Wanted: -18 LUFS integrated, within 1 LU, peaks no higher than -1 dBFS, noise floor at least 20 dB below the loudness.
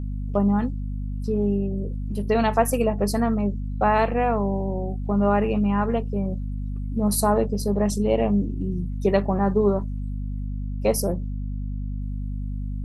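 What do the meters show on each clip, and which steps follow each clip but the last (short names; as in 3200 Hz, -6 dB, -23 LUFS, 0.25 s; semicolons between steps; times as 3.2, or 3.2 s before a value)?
hum 50 Hz; harmonics up to 250 Hz; hum level -26 dBFS; loudness -24.5 LUFS; peak -5.5 dBFS; loudness target -18.0 LUFS
-> notches 50/100/150/200/250 Hz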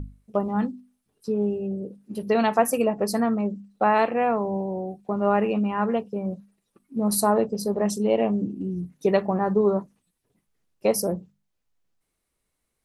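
hum none; loudness -25.0 LUFS; peak -5.5 dBFS; loudness target -18.0 LUFS
-> gain +7 dB; limiter -1 dBFS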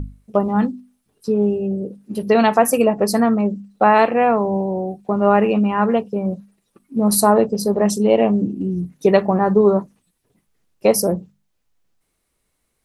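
loudness -18.0 LUFS; peak -1.0 dBFS; noise floor -71 dBFS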